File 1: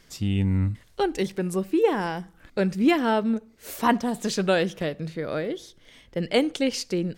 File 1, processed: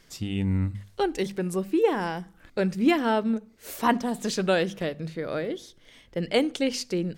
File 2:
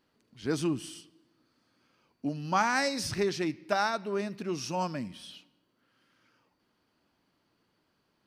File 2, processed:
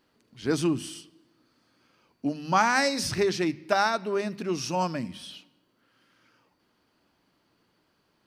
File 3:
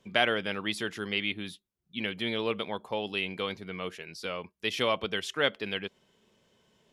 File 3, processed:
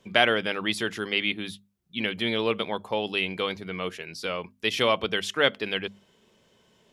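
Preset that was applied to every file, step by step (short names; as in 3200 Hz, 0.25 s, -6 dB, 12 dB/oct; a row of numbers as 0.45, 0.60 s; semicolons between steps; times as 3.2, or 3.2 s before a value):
notches 50/100/150/200/250 Hz; match loudness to -27 LUFS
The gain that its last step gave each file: -1.0, +4.5, +5.0 dB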